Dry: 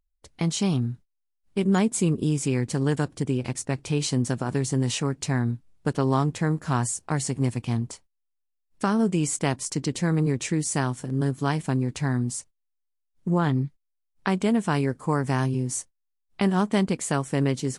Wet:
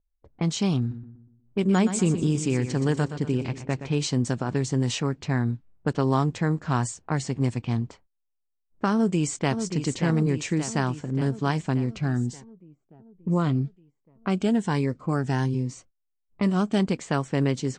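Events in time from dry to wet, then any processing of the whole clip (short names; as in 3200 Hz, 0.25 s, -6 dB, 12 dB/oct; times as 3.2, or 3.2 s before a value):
0.79–3.95 feedback echo 0.121 s, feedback 44%, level -10.5 dB
8.93–9.55 echo throw 0.58 s, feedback 65%, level -7.5 dB
11.86–16.8 cascading phaser rising 1.3 Hz
whole clip: steep low-pass 8500 Hz 48 dB/oct; low-pass opened by the level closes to 760 Hz, open at -19.5 dBFS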